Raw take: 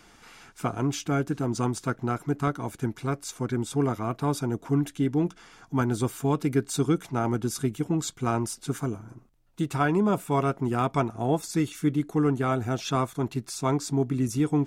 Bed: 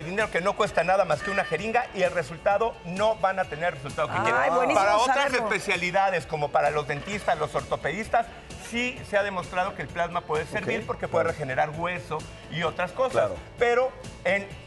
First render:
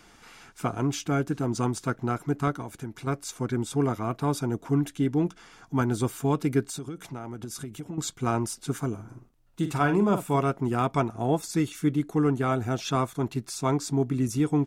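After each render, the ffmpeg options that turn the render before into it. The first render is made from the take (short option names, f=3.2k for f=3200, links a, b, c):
-filter_complex "[0:a]asettb=1/sr,asplit=3[a][b][c];[a]atrim=end=2.624[d];[b]atrim=start=2.62:end=3.07,asetpts=PTS-STARTPTS,afade=t=in:d=0.004:c=qsin,afade=t=out:st=0.446:d=0.004:c=qsin,acompressor=threshold=-37dB:ratio=2:attack=3.2:release=140:knee=1:detection=peak[e];[c]atrim=start=3.066[f];[d][e]acrossfade=d=0.004:c1=hsin:c2=qsin[g];[g][f]acrossfade=d=0.004:c1=qsin:c2=hsin,asettb=1/sr,asplit=3[h][i][j];[h]atrim=end=6.634[k];[i]atrim=start=6.63:end=7.98,asetpts=PTS-STARTPTS,afade=t=in:d=0.004:c=qsin,afade=t=out:st=1.346:d=0.004:c=qsin,acompressor=threshold=-32dB:ratio=10:attack=3.2:release=140:knee=1:detection=peak[l];[j]atrim=start=7.976[m];[k][l]acrossfade=d=0.004:c1=hsin:c2=qsin[n];[n][m]acrossfade=d=0.004:c1=qsin:c2=hsin,asplit=3[o][p][q];[o]afade=t=out:st=8.97:d=0.02[r];[p]asplit=2[s][t];[t]adelay=49,volume=-9dB[u];[s][u]amix=inputs=2:normalize=0,afade=t=in:st=8.97:d=0.02,afade=t=out:st=10.36:d=0.02[v];[q]afade=t=in:st=10.36:d=0.02[w];[r][v][w]amix=inputs=3:normalize=0"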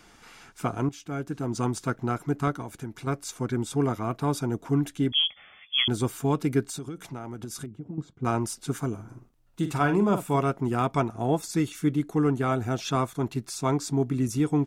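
-filter_complex "[0:a]asettb=1/sr,asplit=3[a][b][c];[a]atrim=end=5.124[d];[b]atrim=start=5.12:end=5.88,asetpts=PTS-STARTPTS,afade=t=in:d=0.004:c=qsin,afade=t=out:st=0.756:d=0.004:c=qsin,lowpass=f=3k:t=q:w=0.5098,lowpass=f=3k:t=q:w=0.6013,lowpass=f=3k:t=q:w=0.9,lowpass=f=3k:t=q:w=2.563,afreqshift=-3500[e];[c]atrim=start=5.876[f];[d][e]acrossfade=d=0.004:c1=hsin:c2=qsin[g];[g][f]acrossfade=d=0.004:c1=qsin:c2=hsin,asettb=1/sr,asplit=3[h][i][j];[h]atrim=end=7.664[k];[i]atrim=start=7.66:end=8.25,asetpts=PTS-STARTPTS,afade=t=in:d=0.004:c=qsin,afade=t=out:st=0.586:d=0.004:c=qsin,bandpass=f=160:t=q:w=0.54[l];[j]atrim=start=8.246[m];[k][l]acrossfade=d=0.004:c1=hsin:c2=qsin[n];[n][m]acrossfade=d=0.004:c1=qsin:c2=hsin,asplit=2[o][p];[o]atrim=end=0.89,asetpts=PTS-STARTPTS,afade=t=out:st=0.886:d=0.004:c=hsin:silence=0.199526[q];[p]atrim=start=0.89,asetpts=PTS-STARTPTS,afade=t=in:d=0.81:silence=0.199526[r];[q][r]concat=n=2:v=0:a=1"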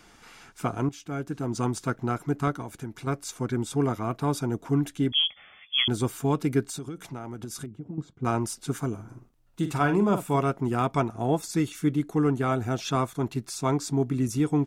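-af anull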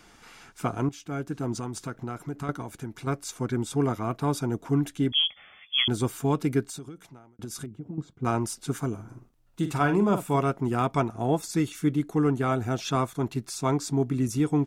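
-filter_complex "[0:a]asettb=1/sr,asplit=3[a][b][c];[a]atrim=end=1.544[d];[b]atrim=start=1.54:end=2.49,asetpts=PTS-STARTPTS,afade=t=in:d=0.004:c=qsin,afade=t=out:st=0.946:d=0.004:c=qsin,acompressor=threshold=-31dB:ratio=3:attack=3.2:release=140:knee=1:detection=peak[e];[c]atrim=start=2.486[f];[d][e]acrossfade=d=0.004:c1=hsin:c2=qsin[g];[g][f]acrossfade=d=0.004:c1=qsin:c2=hsin,asplit=2[h][i];[h]atrim=end=7.39,asetpts=PTS-STARTPTS,afade=t=out:st=6.5:d=0.89[j];[i]atrim=start=7.39,asetpts=PTS-STARTPTS,afade=t=in:d=0.004:c=hsin[k];[j][k]concat=n=2:v=0:a=1"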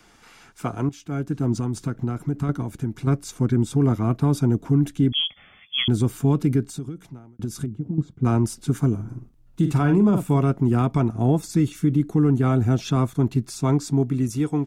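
-filter_complex "[0:a]acrossover=split=310|1100|2000[a][b][c][d];[a]dynaudnorm=f=260:g=9:m=11.5dB[e];[e][b][c][d]amix=inputs=4:normalize=0,alimiter=limit=-10.5dB:level=0:latency=1:release=49"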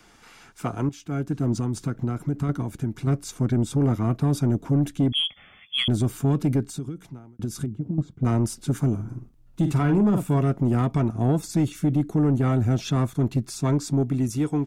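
-af "asoftclip=type=tanh:threshold=-13.5dB"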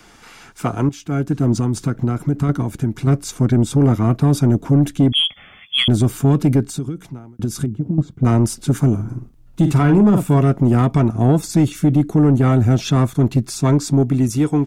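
-af "volume=7.5dB"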